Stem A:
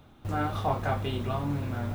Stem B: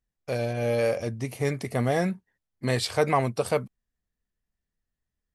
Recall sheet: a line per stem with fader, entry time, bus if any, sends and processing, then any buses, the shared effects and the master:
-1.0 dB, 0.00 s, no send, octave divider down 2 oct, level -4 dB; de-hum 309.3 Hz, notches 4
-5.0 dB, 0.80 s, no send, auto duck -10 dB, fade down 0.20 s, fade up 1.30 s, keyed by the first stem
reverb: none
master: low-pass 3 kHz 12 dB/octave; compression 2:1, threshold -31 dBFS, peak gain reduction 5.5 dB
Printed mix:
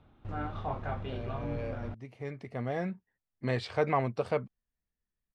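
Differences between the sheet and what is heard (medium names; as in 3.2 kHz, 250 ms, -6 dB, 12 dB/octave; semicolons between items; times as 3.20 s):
stem A -1.0 dB -> -7.5 dB; master: missing compression 2:1, threshold -31 dBFS, peak gain reduction 5.5 dB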